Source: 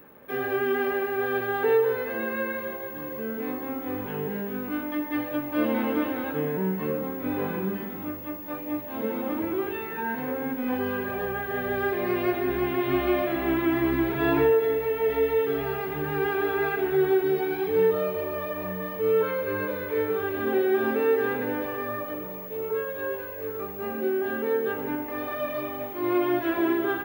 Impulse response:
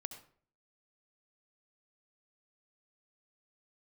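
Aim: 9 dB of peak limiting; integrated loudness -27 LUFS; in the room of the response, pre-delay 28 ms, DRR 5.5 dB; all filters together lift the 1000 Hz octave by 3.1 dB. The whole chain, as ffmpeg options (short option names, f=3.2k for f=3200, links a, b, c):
-filter_complex "[0:a]equalizer=f=1k:t=o:g=4,alimiter=limit=-19.5dB:level=0:latency=1,asplit=2[a][b];[1:a]atrim=start_sample=2205,adelay=28[c];[b][c]afir=irnorm=-1:irlink=0,volume=-2.5dB[d];[a][d]amix=inputs=2:normalize=0,volume=1dB"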